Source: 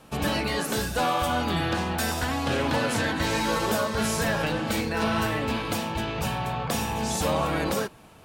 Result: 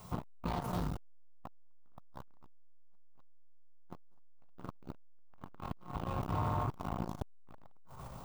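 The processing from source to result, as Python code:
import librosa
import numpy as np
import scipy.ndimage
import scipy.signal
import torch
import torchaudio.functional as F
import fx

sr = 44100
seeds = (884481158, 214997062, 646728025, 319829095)

p1 = np.minimum(x, 2.0 * 10.0 ** (-28.0 / 20.0) - x)
p2 = fx.pitch_keep_formants(p1, sr, semitones=-3.5)
p3 = fx.curve_eq(p2, sr, hz=(180.0, 270.0, 1100.0, 1700.0, 3600.0, 8800.0, 15000.0), db=(0, -15, -1, -18, -16, -20, -2))
p4 = p3 + fx.echo_single(p3, sr, ms=524, db=-15.5, dry=0)
p5 = fx.dmg_noise_colour(p4, sr, seeds[0], colour='blue', level_db=-58.0)
p6 = fx.peak_eq(p5, sr, hz=15000.0, db=-15.0, octaves=0.76)
p7 = fx.transformer_sat(p6, sr, knee_hz=490.0)
y = p7 * 10.0 ** (3.5 / 20.0)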